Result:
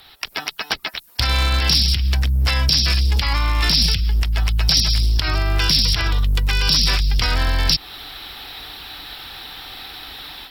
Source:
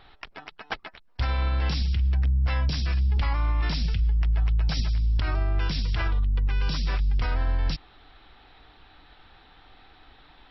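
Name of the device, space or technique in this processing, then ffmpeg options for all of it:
FM broadcast chain: -filter_complex "[0:a]highpass=f=54:p=1,dynaudnorm=f=180:g=3:m=12dB,acrossover=split=410|930[a][b][c];[a]acompressor=threshold=-14dB:ratio=4[d];[b]acompressor=threshold=-34dB:ratio=4[e];[c]acompressor=threshold=-25dB:ratio=4[f];[d][e][f]amix=inputs=3:normalize=0,aemphasis=mode=production:type=75fm,alimiter=limit=-11.5dB:level=0:latency=1:release=241,asoftclip=type=hard:threshold=-14dB,lowpass=f=15k:w=0.5412,lowpass=f=15k:w=1.3066,aemphasis=mode=production:type=75fm,volume=2.5dB"

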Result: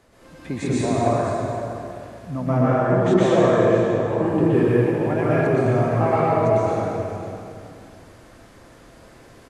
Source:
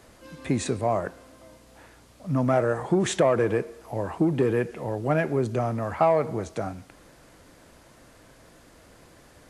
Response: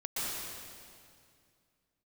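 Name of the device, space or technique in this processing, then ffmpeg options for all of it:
swimming-pool hall: -filter_complex "[0:a]asettb=1/sr,asplit=3[a][b][c];[a]atrim=end=2.414[d];[b]atrim=start=2.41:end=4.08,asetpts=PTS-STARTPTS,afade=t=in:d=0.004:c=qsin,afade=t=out:st=1.666:d=0.004:c=qsin,aemphasis=mode=reproduction:type=50fm[e];[c]atrim=start=4.076[f];[d][e]acrossfade=d=0.004:c1=hsin:c2=qsin[g];[g][f]acrossfade=d=0.004:c1=qsin:c2=hsin,aecho=1:1:514:0.251[h];[1:a]atrim=start_sample=2205[i];[h][i]afir=irnorm=-1:irlink=0,highshelf=f=5.5k:g=-6"

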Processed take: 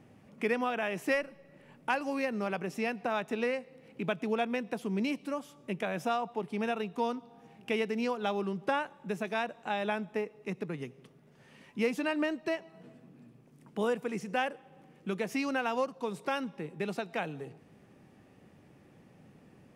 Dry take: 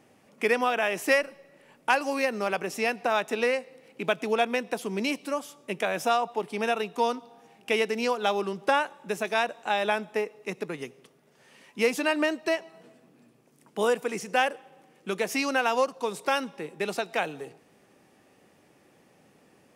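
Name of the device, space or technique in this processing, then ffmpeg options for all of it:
parallel compression: -filter_complex "[0:a]bass=f=250:g=12,treble=f=4k:g=-6,asplit=2[a][b];[b]acompressor=threshold=-41dB:ratio=6,volume=-1dB[c];[a][c]amix=inputs=2:normalize=0,volume=-8dB"

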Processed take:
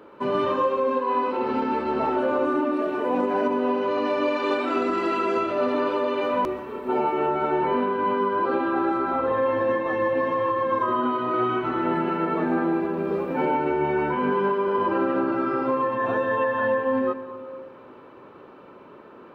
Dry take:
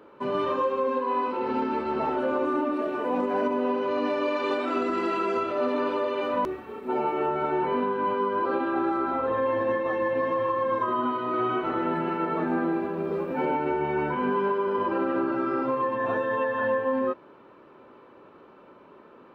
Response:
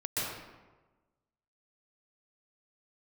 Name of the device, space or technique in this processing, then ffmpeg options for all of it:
compressed reverb return: -filter_complex "[0:a]asettb=1/sr,asplit=3[a][b][c];[a]atrim=end=11.444[d];[b]atrim=start=11.44:end=11.84,asetpts=PTS-STARTPTS,afade=t=in:d=0.004:c=qsin,afade=t=out:st=0.396:d=0.004:c=qsin,equalizer=f=550:t=o:w=0.77:g=-7.5[e];[c]atrim=start=11.836[f];[d][e]acrossfade=d=0.004:c1=hsin:c2=qsin[g];[g][f]acrossfade=d=0.004:c1=qsin:c2=hsin,asplit=2[h][i];[1:a]atrim=start_sample=2205[j];[i][j]afir=irnorm=-1:irlink=0,acompressor=threshold=-25dB:ratio=6,volume=-10dB[k];[h][k]amix=inputs=2:normalize=0,volume=2dB"

